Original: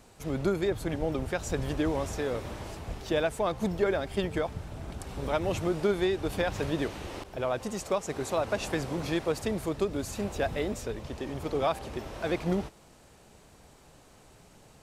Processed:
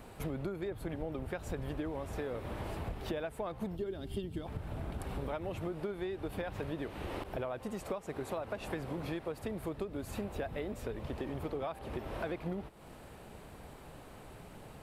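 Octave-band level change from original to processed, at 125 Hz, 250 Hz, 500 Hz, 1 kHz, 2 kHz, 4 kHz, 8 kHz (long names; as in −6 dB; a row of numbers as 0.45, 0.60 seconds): −6.0, −7.5, −9.0, −8.5, −9.5, −11.5, −13.0 decibels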